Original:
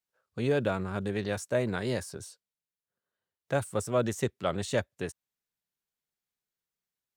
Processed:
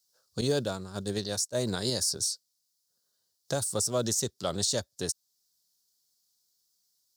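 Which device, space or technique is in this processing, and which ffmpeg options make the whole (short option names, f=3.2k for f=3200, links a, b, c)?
over-bright horn tweeter: -filter_complex "[0:a]highshelf=f=3.4k:t=q:w=3:g=13,alimiter=limit=-19.5dB:level=0:latency=1:release=460,asettb=1/sr,asplit=3[a][b][c];[a]atrim=end=0.414[d];[b]atrim=start=0.41:end=1.58,asetpts=PTS-STARTPTS,afade=t=in:d=0.004:c=qsin,afade=t=out:st=1.166:d=0.004:c=qsin,agate=range=-33dB:threshold=-29dB:ratio=3:detection=peak[e];[c]atrim=start=1.576[f];[d][e]acrossfade=d=0.004:c1=hsin:c2=qsin[g];[g][f]acrossfade=d=0.004:c1=qsin:c2=hsin,volume=3dB"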